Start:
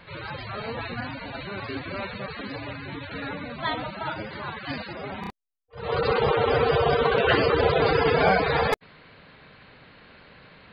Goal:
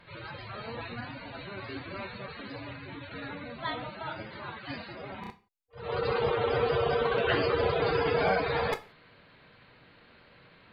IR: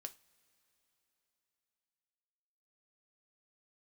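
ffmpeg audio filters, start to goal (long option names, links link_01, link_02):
-filter_complex "[1:a]atrim=start_sample=2205,afade=type=out:start_time=0.2:duration=0.01,atrim=end_sample=9261,asetrate=36603,aresample=44100[link_01];[0:a][link_01]afir=irnorm=-1:irlink=0,volume=-2.5dB"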